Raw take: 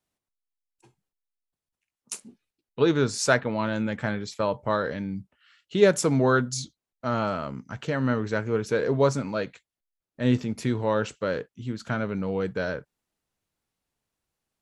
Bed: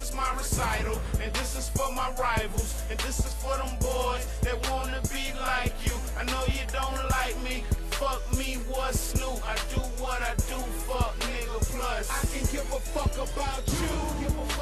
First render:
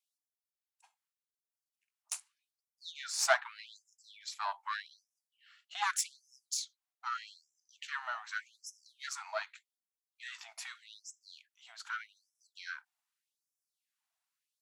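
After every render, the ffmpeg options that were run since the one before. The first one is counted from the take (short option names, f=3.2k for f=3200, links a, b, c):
-af "aeval=exprs='(tanh(5.01*val(0)+0.65)-tanh(0.65))/5.01':c=same,afftfilt=real='re*gte(b*sr/1024,620*pow(5200/620,0.5+0.5*sin(2*PI*0.83*pts/sr)))':imag='im*gte(b*sr/1024,620*pow(5200/620,0.5+0.5*sin(2*PI*0.83*pts/sr)))':win_size=1024:overlap=0.75"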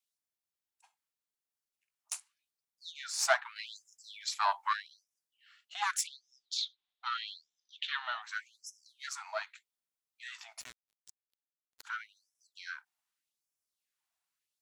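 -filter_complex "[0:a]asettb=1/sr,asplit=3[a][b][c];[a]atrim=end=6.074[d];[b]atrim=start=6.07:end=8.22,asetpts=PTS-STARTPTS,afade=t=in:d=0.004:c=qsin,afade=t=out:st=2.146:d=0.004:c=qsin,lowpass=f=3.6k:t=q:w=6[e];[c]atrim=start=8.216[f];[d][e]acrossfade=d=0.004:c1=hsin:c2=qsin[g];[g][f]acrossfade=d=0.004:c1=qsin:c2=hsin,asplit=3[h][i][j];[h]afade=t=out:st=10.6:d=0.02[k];[i]acrusher=bits=5:mix=0:aa=0.5,afade=t=in:st=10.6:d=0.02,afade=t=out:st=11.83:d=0.02[l];[j]afade=t=in:st=11.83:d=0.02[m];[k][l][m]amix=inputs=3:normalize=0,asplit=3[n][o][p];[n]atrim=end=3.562[q];[o]atrim=start=3.558:end=4.732,asetpts=PTS-STARTPTS,volume=7dB[r];[p]atrim=start=4.728[s];[q][r]acrossfade=d=0.004:c1=hsin:c2=hsin[t];[t][s]acrossfade=d=0.004:c1=hsin:c2=hsin"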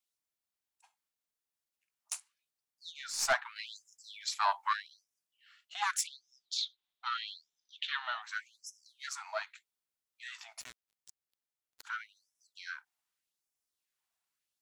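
-filter_complex "[0:a]asettb=1/sr,asplit=3[a][b][c];[a]atrim=end=2.154[d];[b]atrim=start=2.15:end=3.33,asetpts=PTS-STARTPTS,afade=t=in:d=0.004:c=qsin,afade=t=out:st=1.176:d=0.004:c=qsin,aeval=exprs='(tanh(10*val(0)+0.3)-tanh(0.3))/10':c=same[e];[c]atrim=start=3.326[f];[d][e]acrossfade=d=0.004:c1=hsin:c2=qsin[g];[g][f]acrossfade=d=0.004:c1=qsin:c2=hsin"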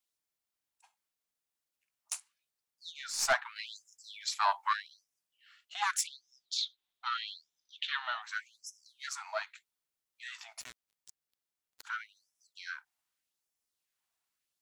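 -af "volume=1dB"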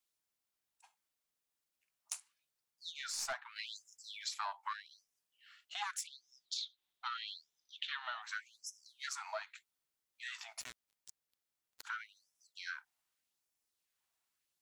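-af "acompressor=threshold=-38dB:ratio=6"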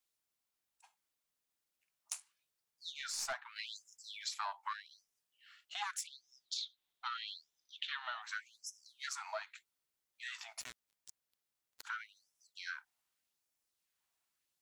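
-filter_complex "[0:a]asettb=1/sr,asplit=3[a][b][c];[a]atrim=end=2.144[d];[b]atrim=start=2.14:end=3.08,asetpts=PTS-STARTPTS,afade=t=in:d=0.004:c=qsin,afade=t=out:st=0.936:d=0.004:c=qsin,asplit=2[e][f];[f]adelay=21,volume=-12dB[g];[e][g]amix=inputs=2:normalize=0,atrim=end_sample=41454[h];[c]atrim=start=3.076[i];[d][h]acrossfade=d=0.004:c1=hsin:c2=qsin[j];[j][i]acrossfade=d=0.004:c1=qsin:c2=hsin"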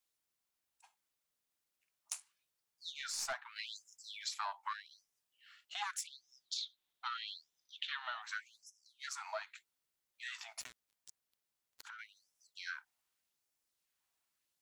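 -filter_complex "[0:a]asettb=1/sr,asplit=3[a][b][c];[a]atrim=end=10.664[d];[b]atrim=start=10.66:end=11.99,asetpts=PTS-STARTPTS,afade=t=in:d=0.004:c=qsin,afade=t=out:st=1.326:d=0.004:c=qsin,acompressor=threshold=-48dB:ratio=5:attack=3.2:release=140:knee=1:detection=peak[e];[c]atrim=start=11.986[f];[d][e]acrossfade=d=0.004:c1=hsin:c2=qsin[g];[g][f]acrossfade=d=0.004:c1=qsin:c2=hsin,asplit=2[h][i];[h]atrim=end=8.64,asetpts=PTS-STARTPTS,afade=t=out:st=8.636:d=0.004:c=hsin:silence=0.211349[j];[i]atrim=start=8.64,asetpts=PTS-STARTPTS,afade=t=in:d=0.62:silence=0.211349[k];[j][k]concat=n=2:v=0:a=1"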